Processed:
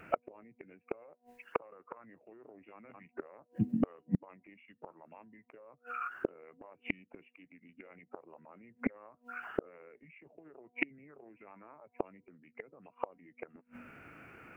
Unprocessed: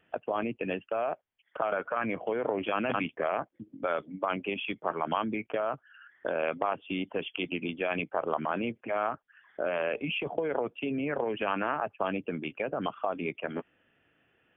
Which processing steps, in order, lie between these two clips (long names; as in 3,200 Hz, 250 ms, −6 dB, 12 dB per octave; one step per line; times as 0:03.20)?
hum removal 242.9 Hz, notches 4
gate with flip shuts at −30 dBFS, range −40 dB
formants moved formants −3 semitones
level +15.5 dB